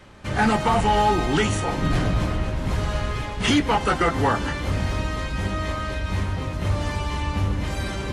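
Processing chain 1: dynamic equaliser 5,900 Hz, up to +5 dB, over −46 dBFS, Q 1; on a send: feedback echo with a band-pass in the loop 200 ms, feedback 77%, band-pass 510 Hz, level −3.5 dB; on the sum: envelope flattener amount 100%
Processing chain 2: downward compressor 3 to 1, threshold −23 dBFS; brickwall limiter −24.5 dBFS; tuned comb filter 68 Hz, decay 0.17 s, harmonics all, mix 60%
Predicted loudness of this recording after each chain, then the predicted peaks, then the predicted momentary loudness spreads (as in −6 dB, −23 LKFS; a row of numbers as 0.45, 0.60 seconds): −16.5, −36.0 LKFS; −3.0, −25.5 dBFS; 2, 2 LU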